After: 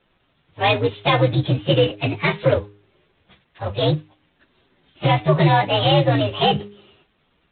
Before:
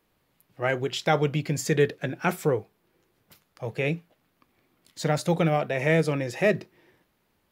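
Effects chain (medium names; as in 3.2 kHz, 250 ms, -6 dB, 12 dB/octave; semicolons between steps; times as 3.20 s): frequency axis rescaled in octaves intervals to 124%; treble shelf 2.5 kHz +8.5 dB; de-hum 102.1 Hz, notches 4; loudness maximiser +15.5 dB; trim -4.5 dB; G.726 24 kbps 8 kHz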